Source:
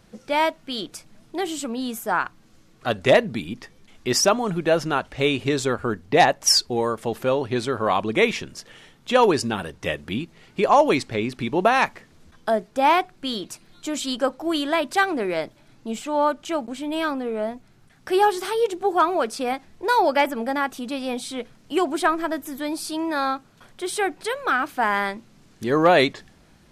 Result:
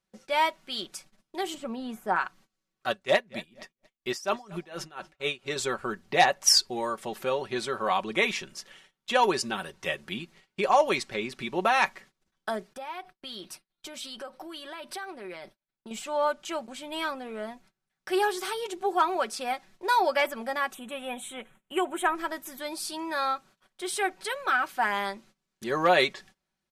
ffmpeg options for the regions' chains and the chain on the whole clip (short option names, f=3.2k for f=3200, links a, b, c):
-filter_complex "[0:a]asettb=1/sr,asplit=3[a][b][c];[a]atrim=end=1.544[d];[b]atrim=start=1.54:end=2.16,asetpts=PTS-STARTPTS,afade=t=in:d=0.004:c=qsin,afade=t=out:st=0.616:d=0.004:c=qsin,acrossover=split=2700[e][f];[f]acompressor=threshold=-45dB:ratio=4:attack=1:release=60[g];[e][g]amix=inputs=2:normalize=0,tiltshelf=f=1.3k:g=5[h];[c]atrim=start=2.156[i];[d][h]acrossfade=d=0.004:c1=hsin:c2=qsin[j];[j][i]acrossfade=d=0.004:c1=qsin:c2=hsin,asettb=1/sr,asplit=3[k][l][m];[k]atrim=end=2.904[n];[l]atrim=start=2.9:end=5.56,asetpts=PTS-STARTPTS,afade=t=in:d=0.004:c=qsin,afade=t=out:st=2.656:d=0.004:c=qsin,asplit=2[o][p];[p]adelay=233,lowpass=f=3.3k:p=1,volume=-19dB,asplit=2[q][r];[r]adelay=233,lowpass=f=3.3k:p=1,volume=0.35,asplit=2[s][t];[t]adelay=233,lowpass=f=3.3k:p=1,volume=0.35[u];[o][q][s][u]amix=inputs=4:normalize=0,atrim=end_sample=117306,aeval=exprs='val(0)*pow(10,-22*(0.5-0.5*cos(2*PI*4.2*n/s))/20)':c=same[v];[m]atrim=start=5.556[w];[n][v]acrossfade=d=0.004:c1=hsin:c2=qsin[x];[x][w]acrossfade=d=0.004:c1=qsin:c2=hsin,asettb=1/sr,asplit=3[y][z][aa];[y]atrim=end=12.734[ab];[z]atrim=start=12.73:end=15.91,asetpts=PTS-STARTPTS,afade=t=in:d=0.004:c=qsin,afade=t=out:st=3.176:d=0.004:c=qsin,agate=range=-33dB:threshold=-45dB:ratio=3:release=100:detection=peak,acompressor=threshold=-29dB:ratio=12:attack=3.2:release=140:knee=1:detection=peak,equalizer=f=7k:t=o:w=0.21:g=-12[ac];[aa]atrim=start=15.906[ad];[ab][ac]acrossfade=d=0.004:c1=hsin:c2=qsin[ae];[ae][ad]acrossfade=d=0.004:c1=qsin:c2=hsin,asettb=1/sr,asplit=3[af][ag][ah];[af]atrim=end=20.744[ai];[ag]atrim=start=20.74:end=22.15,asetpts=PTS-STARTPTS,afade=t=in:d=0.004:c=qsin,afade=t=out:st=1.406:d=0.004:c=qsin,equalizer=f=6.1k:w=4.5:g=-7,asoftclip=type=hard:threshold=-9.5dB,asuperstop=centerf=4800:order=4:qfactor=1.4[aj];[ah]atrim=start=22.146[ak];[ai][aj]acrossfade=d=0.004:c1=hsin:c2=qsin[al];[al][ak]acrossfade=d=0.004:c1=qsin:c2=hsin,agate=range=-22dB:threshold=-46dB:ratio=16:detection=peak,lowshelf=f=490:g=-10,aecho=1:1:5.3:0.56,volume=-3.5dB"